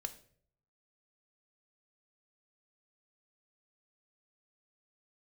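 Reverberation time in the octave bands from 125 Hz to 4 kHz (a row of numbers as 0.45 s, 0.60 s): 1.0 s, 0.65 s, 0.65 s, 0.45 s, 0.45 s, 0.40 s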